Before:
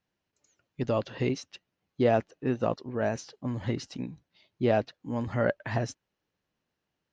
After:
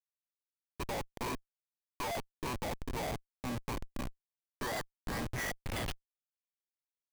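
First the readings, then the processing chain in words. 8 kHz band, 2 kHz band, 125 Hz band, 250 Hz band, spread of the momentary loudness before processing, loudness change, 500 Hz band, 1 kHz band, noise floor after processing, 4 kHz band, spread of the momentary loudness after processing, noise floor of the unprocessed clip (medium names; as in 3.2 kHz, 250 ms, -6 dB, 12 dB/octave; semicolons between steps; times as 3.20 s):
no reading, -3.5 dB, -10.5 dB, -11.5 dB, 11 LU, -9.0 dB, -14.0 dB, -5.0 dB, under -85 dBFS, +0.5 dB, 7 LU, -85 dBFS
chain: bit-reversed sample order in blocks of 32 samples; band-pass sweep 970 Hz -> 6.3 kHz, 4.18–6.72 s; Schmitt trigger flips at -45.5 dBFS; trim +8 dB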